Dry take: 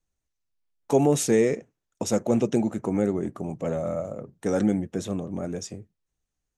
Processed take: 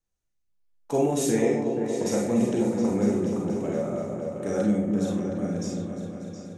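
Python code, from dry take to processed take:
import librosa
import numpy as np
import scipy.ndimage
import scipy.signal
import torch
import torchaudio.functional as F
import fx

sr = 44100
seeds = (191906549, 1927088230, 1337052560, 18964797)

y = fx.echo_opening(x, sr, ms=239, hz=400, octaves=2, feedback_pct=70, wet_db=-3)
y = fx.rev_schroeder(y, sr, rt60_s=0.37, comb_ms=31, drr_db=-0.5)
y = y * 10.0 ** (-5.5 / 20.0)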